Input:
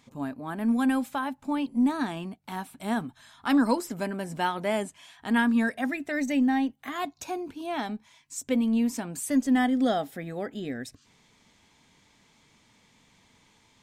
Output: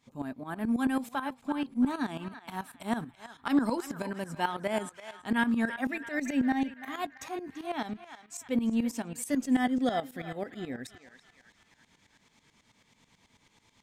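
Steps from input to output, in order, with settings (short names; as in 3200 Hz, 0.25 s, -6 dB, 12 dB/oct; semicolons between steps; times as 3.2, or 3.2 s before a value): narrowing echo 0.337 s, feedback 55%, band-pass 1800 Hz, level -9.5 dB; tremolo saw up 9.2 Hz, depth 80%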